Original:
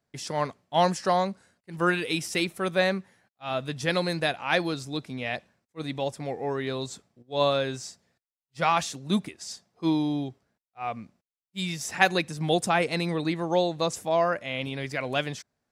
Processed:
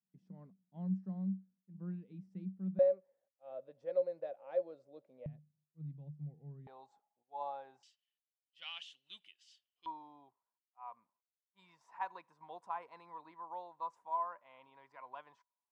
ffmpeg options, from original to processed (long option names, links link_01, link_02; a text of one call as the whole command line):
ffmpeg -i in.wav -af "asetnsamples=nb_out_samples=441:pad=0,asendcmd='2.79 bandpass f 550;5.26 bandpass f 150;6.67 bandpass f 830;7.83 bandpass f 3000;9.86 bandpass f 980',bandpass=frequency=190:width_type=q:width=19:csg=0" out.wav